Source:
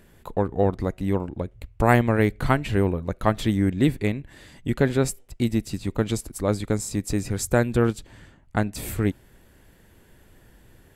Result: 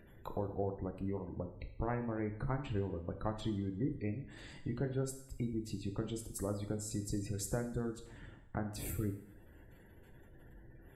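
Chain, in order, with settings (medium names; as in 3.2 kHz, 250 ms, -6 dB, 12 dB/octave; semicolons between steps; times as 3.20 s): spectral gate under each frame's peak -25 dB strong; dynamic bell 2 kHz, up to -6 dB, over -45 dBFS, Q 2.3; compression 2.5:1, threshold -35 dBFS, peak gain reduction 15 dB; two-slope reverb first 0.68 s, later 2.2 s, from -26 dB, DRR 5 dB; trim -5 dB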